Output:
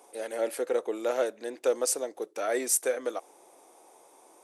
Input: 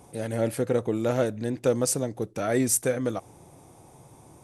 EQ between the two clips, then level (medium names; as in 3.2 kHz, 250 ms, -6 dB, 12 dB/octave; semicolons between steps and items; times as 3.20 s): high-pass 380 Hz 24 dB/octave; -1.5 dB